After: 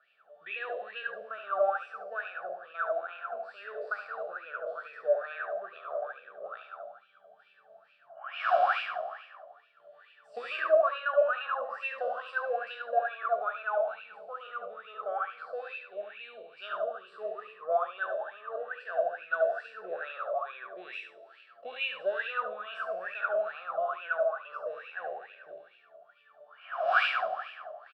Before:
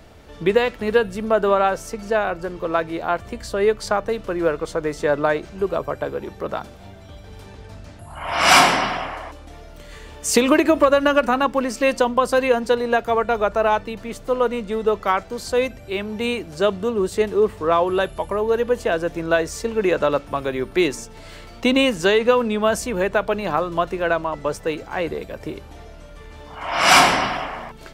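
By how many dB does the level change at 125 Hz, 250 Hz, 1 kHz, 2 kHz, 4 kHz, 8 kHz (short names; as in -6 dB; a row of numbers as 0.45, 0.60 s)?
under -40 dB, under -35 dB, -11.5 dB, -10.5 dB, -19.0 dB, under -40 dB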